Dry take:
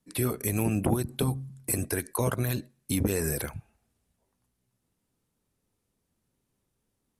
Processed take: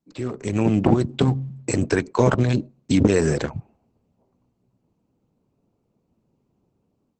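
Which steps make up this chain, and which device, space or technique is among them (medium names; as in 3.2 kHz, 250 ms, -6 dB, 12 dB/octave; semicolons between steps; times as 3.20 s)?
local Wiener filter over 25 samples; 2.36–2.95 s: dynamic bell 1.3 kHz, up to -6 dB, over -53 dBFS, Q 1.3; video call (high-pass 110 Hz 12 dB/octave; level rider gain up to 13 dB; Opus 12 kbps 48 kHz)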